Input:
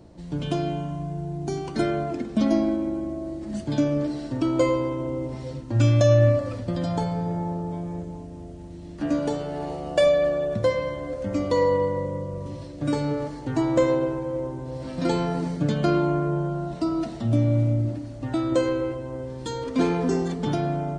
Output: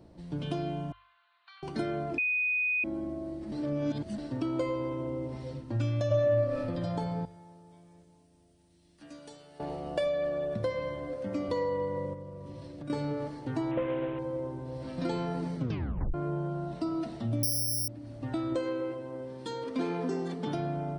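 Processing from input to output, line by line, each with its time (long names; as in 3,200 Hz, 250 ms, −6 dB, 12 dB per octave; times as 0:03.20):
0:00.92–0:01.63: Chebyshev band-pass filter 1,100–4,100 Hz, order 4
0:02.18–0:02.84: beep over 2,490 Hz −16 dBFS
0:03.52–0:04.18: reverse
0:06.07–0:06.58: thrown reverb, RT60 0.87 s, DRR −11 dB
0:07.25–0:09.60: first-order pre-emphasis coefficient 0.9
0:11.08–0:11.49: high-pass filter 120 Hz
0:12.13–0:12.90: downward compressor, threshold −33 dBFS
0:13.71–0:14.19: variable-slope delta modulation 16 kbit/s
0:15.57: tape stop 0.57 s
0:17.43–0:17.88: bad sample-rate conversion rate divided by 8×, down none, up zero stuff
0:18.55–0:20.55: high-pass filter 170 Hz
whole clip: parametric band 6,900 Hz −8.5 dB 0.39 octaves; mains-hum notches 50/100 Hz; downward compressor 3 to 1, threshold −23 dBFS; level −5.5 dB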